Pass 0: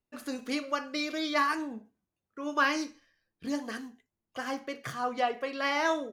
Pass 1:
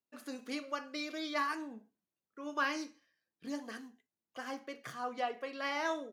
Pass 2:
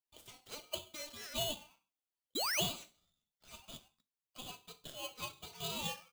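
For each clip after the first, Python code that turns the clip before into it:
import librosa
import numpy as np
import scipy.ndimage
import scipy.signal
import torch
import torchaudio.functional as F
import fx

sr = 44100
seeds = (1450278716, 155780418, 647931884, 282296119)

y1 = scipy.signal.sosfilt(scipy.signal.butter(2, 160.0, 'highpass', fs=sr, output='sos'), x)
y1 = y1 * librosa.db_to_amplitude(-7.0)
y2 = fx.ladder_highpass(y1, sr, hz=820.0, resonance_pct=25)
y2 = fx.spec_paint(y2, sr, seeds[0], shape='rise', start_s=2.35, length_s=0.26, low_hz=2000.0, high_hz=4800.0, level_db=-37.0)
y2 = y2 * np.sign(np.sin(2.0 * np.pi * 1800.0 * np.arange(len(y2)) / sr))
y2 = y2 * librosa.db_to_amplitude(2.0)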